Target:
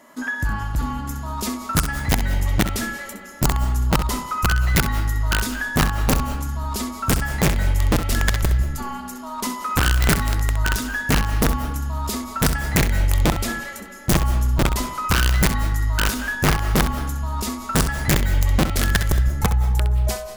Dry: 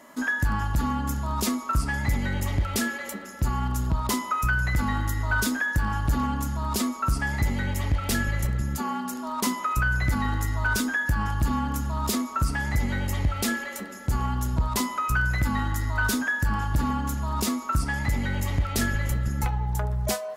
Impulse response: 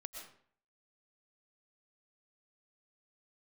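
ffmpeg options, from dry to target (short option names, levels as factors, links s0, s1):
-filter_complex "[0:a]asubboost=boost=4.5:cutoff=68,aeval=exprs='(mod(3.98*val(0)+1,2)-1)/3.98':c=same,asplit=2[s0][s1];[1:a]atrim=start_sample=2205,adelay=65[s2];[s1][s2]afir=irnorm=-1:irlink=0,volume=0.596[s3];[s0][s3]amix=inputs=2:normalize=0"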